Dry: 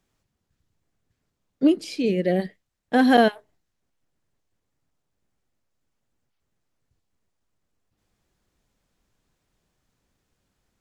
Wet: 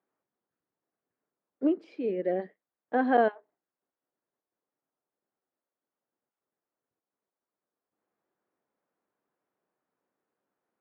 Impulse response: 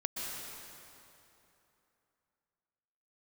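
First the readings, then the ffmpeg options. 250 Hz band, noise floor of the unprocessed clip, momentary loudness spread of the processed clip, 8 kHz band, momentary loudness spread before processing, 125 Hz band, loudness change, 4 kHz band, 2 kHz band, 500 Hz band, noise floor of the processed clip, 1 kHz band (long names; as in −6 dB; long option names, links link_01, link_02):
−9.5 dB, −78 dBFS, 9 LU, can't be measured, 8 LU, below −15 dB, −7.5 dB, below −20 dB, −8.5 dB, −5.5 dB, below −85 dBFS, −5.0 dB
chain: -af "asuperpass=centerf=690:order=4:qfactor=0.55,volume=-5dB"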